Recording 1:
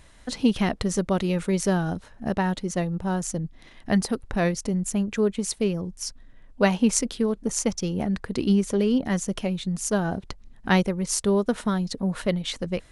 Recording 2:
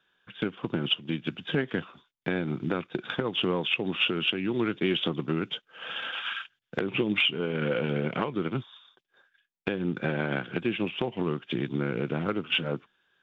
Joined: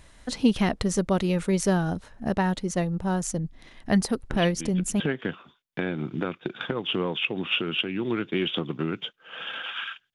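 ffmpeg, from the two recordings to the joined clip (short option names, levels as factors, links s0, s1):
-filter_complex "[1:a]asplit=2[s0][s1];[0:a]apad=whole_dur=10.14,atrim=end=10.14,atrim=end=5.002[s2];[s1]atrim=start=1.488:end=6.63[s3];[s0]atrim=start=0.79:end=1.49,asetpts=PTS-STARTPTS,volume=0.447,afade=t=in:d=0.004:c=hsin,afade=t=out:st=0.696:d=0.004:c=hsin,adelay=4300[s4];[s2][s3]acrossfade=d=0.004:c1=hsin:c2=hsin[s5];[s5][s4]amix=inputs=2:normalize=0"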